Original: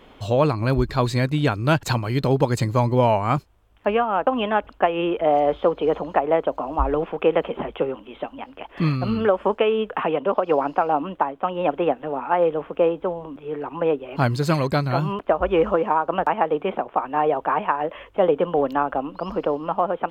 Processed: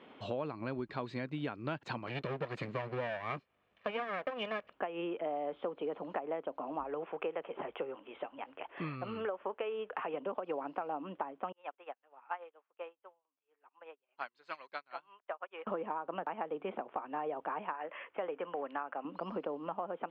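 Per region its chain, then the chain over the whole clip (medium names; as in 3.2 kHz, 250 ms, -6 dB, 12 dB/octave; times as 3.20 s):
2.07–4.73 s: comb filter that takes the minimum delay 1.7 ms + peaking EQ 2.4 kHz +4.5 dB 1.1 oct
6.83–10.14 s: low-pass 3.2 kHz + peaking EQ 220 Hz -11.5 dB 0.93 oct
11.52–15.67 s: high-pass 940 Hz + upward expansion 2.5:1, over -45 dBFS
17.73–19.05 s: low-pass 2.4 kHz 24 dB/octave + tilt EQ +4.5 dB/octave
whole clip: Chebyshev band-pass 210–2800 Hz, order 2; compression 4:1, threshold -30 dBFS; trim -6 dB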